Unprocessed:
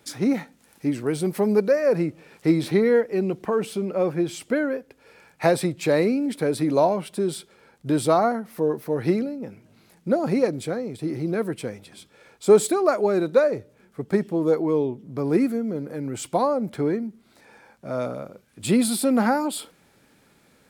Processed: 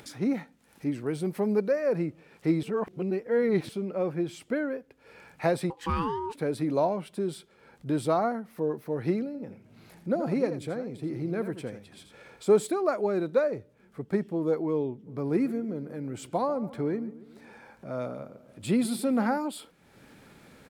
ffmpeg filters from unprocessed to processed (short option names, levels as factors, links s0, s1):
-filter_complex "[0:a]asettb=1/sr,asplit=3[s0][s1][s2];[s0]atrim=end=5.704[s3];[s1]atrim=start=5.7:end=6.35,asetpts=PTS-STARTPTS,afade=t=in:d=0.004:c=qsin,afade=t=out:st=0.646:d=0.004:c=qsin,aeval=exprs='val(0)*sin(2*PI*660*n/s)':c=same[s4];[s2]atrim=start=6.346[s5];[s3][s4]acrossfade=d=0.004:c1=hsin:c2=qsin[s6];[s6][s5]acrossfade=d=0.004:c1=qsin:c2=hsin,asettb=1/sr,asplit=3[s7][s8][s9];[s7]atrim=end=9.264[s10];[s8]atrim=start=9.26:end=12.51,asetpts=PTS-STARTPTS,afade=t=in:d=0.004:c=qsin,afade=t=out:st=3.246:d=0.004:c=qsin,aecho=1:1:83:0.316,atrim=end_sample=143325[s11];[s9]atrim=start=12.506[s12];[s10][s11]acrossfade=d=0.004:c1=hsin:c2=qsin[s13];[s13][s12]acrossfade=d=0.004:c1=qsin:c2=hsin,asplit=3[s14][s15][s16];[s14]afade=t=out:st=15.06:d=0.02[s17];[s15]asplit=2[s18][s19];[s19]adelay=141,lowpass=f=2000:p=1,volume=0.158,asplit=2[s20][s21];[s21]adelay=141,lowpass=f=2000:p=1,volume=0.48,asplit=2[s22][s23];[s23]adelay=141,lowpass=f=2000:p=1,volume=0.48,asplit=2[s24][s25];[s25]adelay=141,lowpass=f=2000:p=1,volume=0.48[s26];[s18][s20][s22][s24][s26]amix=inputs=5:normalize=0,afade=t=in:st=15.06:d=0.02,afade=t=out:st=19.37:d=0.02[s27];[s16]afade=t=in:st=19.37:d=0.02[s28];[s17][s27][s28]amix=inputs=3:normalize=0,asplit=3[s29][s30][s31];[s29]atrim=end=2.632[s32];[s30]atrim=start=2.628:end=3.692,asetpts=PTS-STARTPTS,areverse[s33];[s31]atrim=start=3.688[s34];[s32][s33]acrossfade=d=0.004:c1=hsin:c2=hsin[s35];[s35][s34]acrossfade=d=0.004:c1=hsin:c2=hsin,bass=f=250:g=2,treble=f=4000:g=-5,acompressor=mode=upward:threshold=0.0178:ratio=2.5,volume=0.473"